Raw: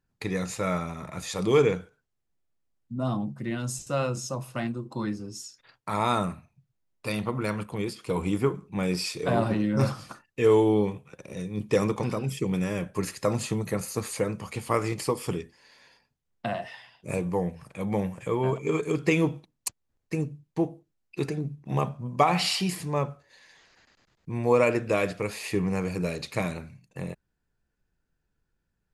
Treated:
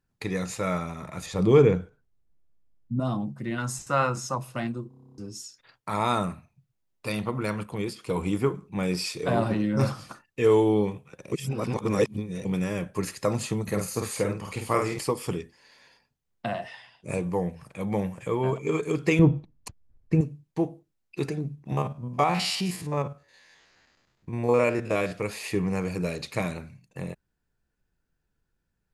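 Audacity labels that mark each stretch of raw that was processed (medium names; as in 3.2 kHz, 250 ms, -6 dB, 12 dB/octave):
1.260000	3.000000	tilt EQ -2.5 dB/octave
3.580000	4.380000	high-order bell 1.3 kHz +9.5 dB
4.880000	4.880000	stutter in place 0.03 s, 10 plays
11.320000	12.450000	reverse
13.630000	14.990000	doubling 49 ms -4 dB
16.670000	17.240000	careless resampling rate divided by 2×, down none, up filtered
19.190000	20.210000	RIAA curve playback
21.720000	25.120000	spectrogram pixelated in time every 50 ms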